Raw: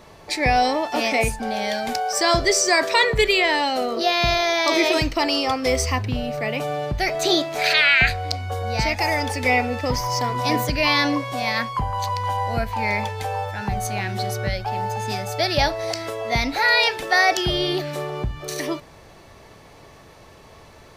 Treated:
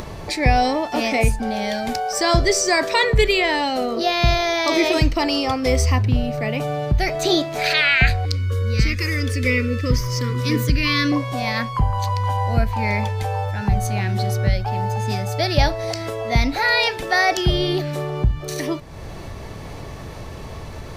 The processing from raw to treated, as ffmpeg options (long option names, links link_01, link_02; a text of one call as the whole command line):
ffmpeg -i in.wav -filter_complex "[0:a]asettb=1/sr,asplit=3[link_01][link_02][link_03];[link_01]atrim=end=8.254[link_04];[link_02]atrim=start=8.25:end=11.12,asetpts=PTS-STARTPTS,afade=type=in:duration=0.004:curve=qsin,afade=type=out:start_time=2.866:duration=0.004:curve=qsin,asuperstop=centerf=760:order=8:qfactor=1.4[link_05];[link_03]atrim=start=11.116[link_06];[link_04][link_05]acrossfade=duration=0.004:curve1=hsin:curve2=qsin[link_07];[link_07][link_06]acrossfade=duration=0.004:curve1=qsin:curve2=hsin,lowshelf=frequency=230:gain=11,acompressor=mode=upward:threshold=-22dB:ratio=2.5,volume=-1dB" out.wav